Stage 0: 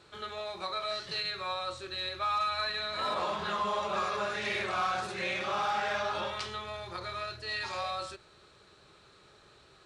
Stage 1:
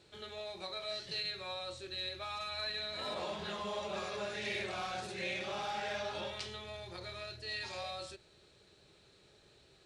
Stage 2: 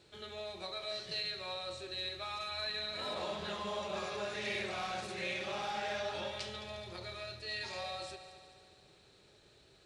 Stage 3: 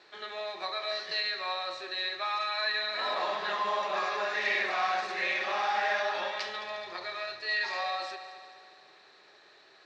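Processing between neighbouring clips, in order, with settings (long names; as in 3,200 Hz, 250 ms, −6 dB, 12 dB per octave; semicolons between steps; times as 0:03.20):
parametric band 1,200 Hz −11.5 dB 0.85 octaves; level −3 dB
echo machine with several playback heads 71 ms, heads all three, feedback 64%, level −18 dB
loudspeaker in its box 440–5,600 Hz, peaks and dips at 510 Hz −4 dB, 740 Hz +4 dB, 1,100 Hz +7 dB, 1,800 Hz +9 dB, 3,200 Hz −4 dB; level +6.5 dB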